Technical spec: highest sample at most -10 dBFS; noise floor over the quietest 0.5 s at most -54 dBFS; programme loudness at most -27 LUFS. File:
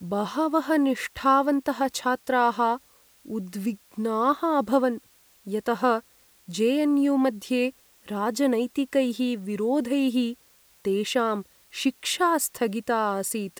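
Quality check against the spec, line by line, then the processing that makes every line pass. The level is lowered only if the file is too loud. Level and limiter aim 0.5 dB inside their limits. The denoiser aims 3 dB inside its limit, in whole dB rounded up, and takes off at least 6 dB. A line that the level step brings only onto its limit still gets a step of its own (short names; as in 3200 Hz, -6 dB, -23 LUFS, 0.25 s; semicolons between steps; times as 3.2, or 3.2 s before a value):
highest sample -9.0 dBFS: fail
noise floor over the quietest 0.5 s -59 dBFS: OK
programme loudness -25.5 LUFS: fail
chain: gain -2 dB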